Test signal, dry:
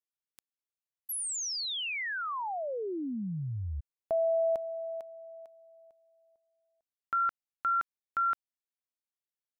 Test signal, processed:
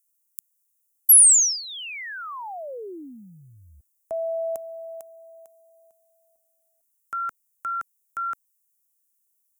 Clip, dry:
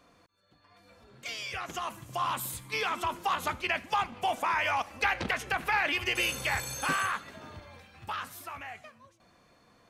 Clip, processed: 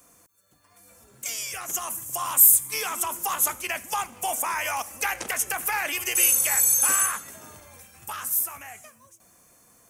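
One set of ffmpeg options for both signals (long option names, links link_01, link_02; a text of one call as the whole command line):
ffmpeg -i in.wav -filter_complex "[0:a]acrossover=split=310|1500|3000[link_01][link_02][link_03][link_04];[link_01]acompressor=threshold=-53dB:ratio=6:release=36[link_05];[link_05][link_02][link_03][link_04]amix=inputs=4:normalize=0,aexciter=amount=11.4:drive=6.2:freq=6200" out.wav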